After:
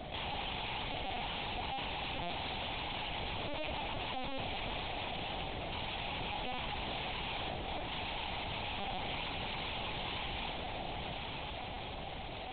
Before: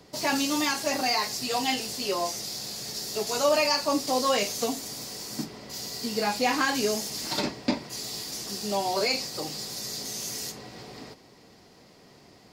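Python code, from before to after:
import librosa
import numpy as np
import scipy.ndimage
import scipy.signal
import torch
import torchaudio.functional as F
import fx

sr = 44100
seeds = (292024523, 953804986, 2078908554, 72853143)

y = 10.0 ** (-19.0 / 20.0) * np.tanh(x / 10.0 ** (-19.0 / 20.0))
y = fx.high_shelf(y, sr, hz=2300.0, db=6.0)
y = (np.kron(y[::2], np.eye(2)[0]) * 2)[:len(y)]
y = fx.rev_schroeder(y, sr, rt60_s=0.36, comb_ms=31, drr_db=10.5)
y = (np.mod(10.0 ** (22.0 / 20.0) * y + 1.0, 2.0) - 1.0) / 10.0 ** (22.0 / 20.0)
y = scipy.signal.sosfilt(scipy.signal.butter(2, 3000.0, 'lowpass', fs=sr, output='sos'), y)
y = fx.low_shelf(y, sr, hz=450.0, db=-8.5)
y = fx.fixed_phaser(y, sr, hz=640.0, stages=4)
y = fx.echo_diffused(y, sr, ms=972, feedback_pct=43, wet_db=-9.0)
y = fx.lpc_vocoder(y, sr, seeds[0], excitation='pitch_kept', order=8)
y = fx.env_flatten(y, sr, amount_pct=70)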